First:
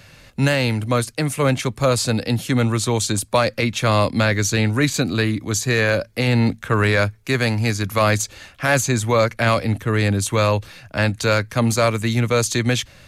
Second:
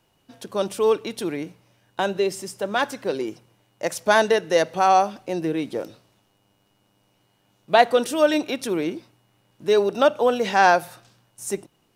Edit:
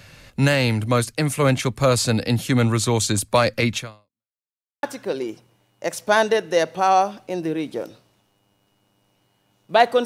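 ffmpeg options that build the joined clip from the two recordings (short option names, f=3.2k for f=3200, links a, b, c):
-filter_complex "[0:a]apad=whole_dur=10.05,atrim=end=10.05,asplit=2[a][b];[a]atrim=end=4.32,asetpts=PTS-STARTPTS,afade=t=out:st=3.77:d=0.55:c=exp[c];[b]atrim=start=4.32:end=4.83,asetpts=PTS-STARTPTS,volume=0[d];[1:a]atrim=start=2.82:end=8.04,asetpts=PTS-STARTPTS,afade=t=in:d=0.004:c=hsin[e];[c][d][e]concat=n=3:v=0:a=1"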